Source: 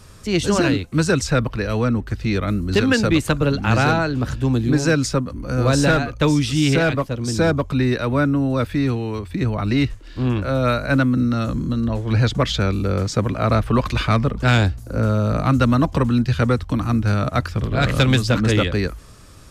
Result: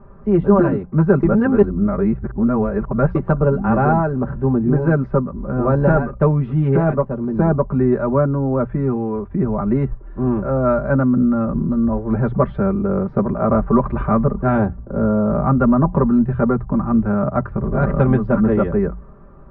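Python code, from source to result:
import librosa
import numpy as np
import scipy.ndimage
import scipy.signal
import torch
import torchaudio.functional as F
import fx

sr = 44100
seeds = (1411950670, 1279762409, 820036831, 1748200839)

y = fx.edit(x, sr, fx.reverse_span(start_s=1.23, length_s=1.92), tone=tone)
y = scipy.signal.sosfilt(scipy.signal.butter(4, 1200.0, 'lowpass', fs=sr, output='sos'), y)
y = fx.hum_notches(y, sr, base_hz=60, count=3)
y = y + 0.77 * np.pad(y, (int(5.1 * sr / 1000.0), 0))[:len(y)]
y = y * 10.0 ** (2.0 / 20.0)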